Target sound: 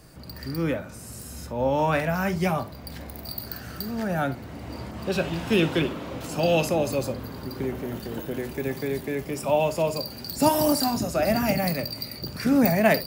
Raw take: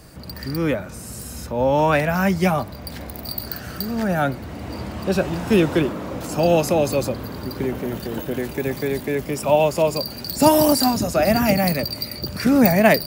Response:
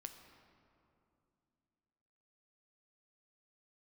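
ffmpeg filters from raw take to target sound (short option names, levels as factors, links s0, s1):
-filter_complex "[0:a]asettb=1/sr,asplit=3[s0][s1][s2];[s0]atrim=end=4.914[s3];[s1]atrim=start=4.91:end=6.65,asetpts=PTS-STARTPTS,afade=t=in:d=0.004:c=qsin,afade=t=out:st=1.736:d=0.004:c=qsin,adynamicequalizer=threshold=0.00708:dfrequency=3100:dqfactor=1.3:tfrequency=3100:tqfactor=1.3:attack=5:release=100:ratio=0.375:range=4:mode=boostabove:tftype=bell[s4];[s2]atrim=start=6.646[s5];[s3][s4]acrossfade=d=0.004:c1=hsin:c2=qsin[s6];[s6][s5]acrossfade=d=0.004:c1=qsin:c2=hsin[s7];[1:a]atrim=start_sample=2205,atrim=end_sample=3528[s8];[s7][s8]afir=irnorm=-1:irlink=0"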